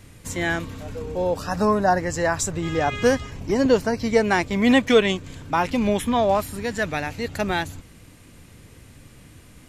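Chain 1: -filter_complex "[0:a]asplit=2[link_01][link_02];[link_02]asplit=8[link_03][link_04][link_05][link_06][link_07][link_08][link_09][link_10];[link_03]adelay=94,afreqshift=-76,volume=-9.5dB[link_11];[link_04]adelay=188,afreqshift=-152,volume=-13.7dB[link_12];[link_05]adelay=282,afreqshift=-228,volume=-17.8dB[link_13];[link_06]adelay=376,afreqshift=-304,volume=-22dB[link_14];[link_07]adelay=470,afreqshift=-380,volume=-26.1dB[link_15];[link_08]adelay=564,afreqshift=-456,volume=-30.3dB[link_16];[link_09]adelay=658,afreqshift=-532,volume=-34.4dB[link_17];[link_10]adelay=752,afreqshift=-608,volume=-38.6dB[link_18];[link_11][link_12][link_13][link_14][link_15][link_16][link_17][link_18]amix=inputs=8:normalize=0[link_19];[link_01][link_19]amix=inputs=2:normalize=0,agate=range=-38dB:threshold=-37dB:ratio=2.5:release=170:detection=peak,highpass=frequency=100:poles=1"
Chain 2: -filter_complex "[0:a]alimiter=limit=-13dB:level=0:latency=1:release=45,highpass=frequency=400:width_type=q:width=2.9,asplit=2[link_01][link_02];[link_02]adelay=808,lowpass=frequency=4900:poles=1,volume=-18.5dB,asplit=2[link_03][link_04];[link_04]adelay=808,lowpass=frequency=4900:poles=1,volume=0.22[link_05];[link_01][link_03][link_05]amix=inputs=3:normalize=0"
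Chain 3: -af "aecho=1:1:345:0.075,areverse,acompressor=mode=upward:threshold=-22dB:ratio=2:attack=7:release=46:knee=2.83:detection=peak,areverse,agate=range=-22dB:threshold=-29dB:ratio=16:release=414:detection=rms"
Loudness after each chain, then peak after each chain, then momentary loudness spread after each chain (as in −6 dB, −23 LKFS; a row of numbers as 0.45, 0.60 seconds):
−22.0, −20.5, −22.0 LKFS; −4.5, −5.0, −5.5 dBFS; 9, 9, 9 LU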